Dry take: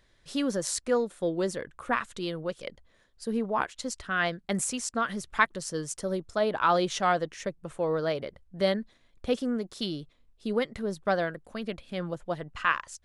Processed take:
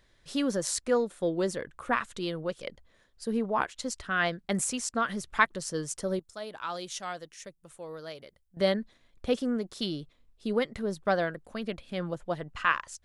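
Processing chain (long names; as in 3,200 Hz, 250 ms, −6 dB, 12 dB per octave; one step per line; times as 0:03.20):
0:06.19–0:08.57: first-order pre-emphasis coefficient 0.8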